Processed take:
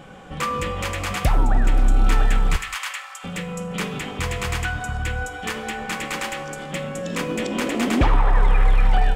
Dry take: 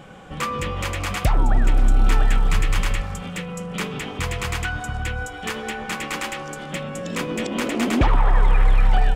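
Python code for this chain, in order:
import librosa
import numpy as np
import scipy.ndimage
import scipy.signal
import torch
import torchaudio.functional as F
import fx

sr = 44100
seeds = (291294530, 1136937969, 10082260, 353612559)

y = fx.highpass(x, sr, hz=930.0, slope=24, at=(2.56, 3.24))
y = fx.rev_gated(y, sr, seeds[0], gate_ms=220, shape='falling', drr_db=11.0)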